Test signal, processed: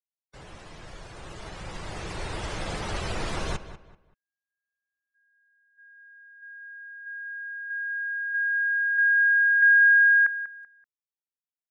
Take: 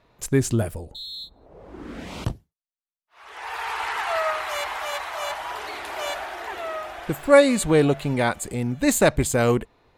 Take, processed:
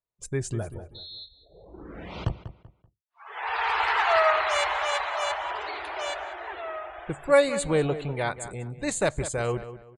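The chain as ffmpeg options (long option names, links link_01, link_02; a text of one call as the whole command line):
ffmpeg -i in.wav -filter_complex "[0:a]afftdn=noise_reduction=29:noise_floor=-43,equalizer=frequency=250:width=4.6:gain=-11.5,dynaudnorm=framelen=330:gausssize=13:maxgain=16dB,asplit=2[link_01][link_02];[link_02]adelay=192,lowpass=frequency=2900:poles=1,volume=-12.5dB,asplit=2[link_03][link_04];[link_04]adelay=192,lowpass=frequency=2900:poles=1,volume=0.3,asplit=2[link_05][link_06];[link_06]adelay=192,lowpass=frequency=2900:poles=1,volume=0.3[link_07];[link_03][link_05][link_07]amix=inputs=3:normalize=0[link_08];[link_01][link_08]amix=inputs=2:normalize=0,aresample=22050,aresample=44100,volume=-7.5dB" out.wav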